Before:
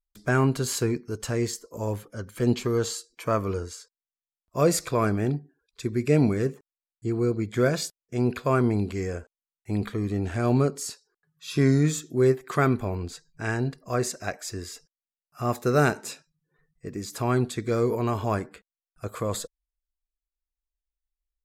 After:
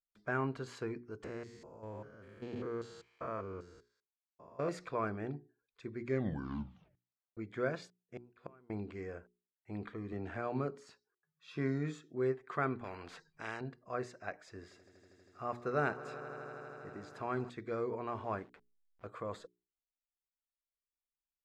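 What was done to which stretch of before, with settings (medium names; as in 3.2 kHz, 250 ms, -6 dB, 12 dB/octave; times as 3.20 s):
1.24–4.69 s: spectrogram pixelated in time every 200 ms
5.97 s: tape stop 1.40 s
8.01–8.70 s: inverted gate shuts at -19 dBFS, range -28 dB
10.12–10.87 s: three bands compressed up and down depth 40%
12.84–13.61 s: spectrum-flattening compressor 2:1
14.31–17.50 s: echo with a slow build-up 80 ms, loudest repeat 5, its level -18 dB
18.08–19.07 s: send-on-delta sampling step -45 dBFS
whole clip: low-pass 1.7 kHz 12 dB/octave; tilt EQ +2.5 dB/octave; hum notches 60/120/180/240/300/360/420 Hz; trim -9 dB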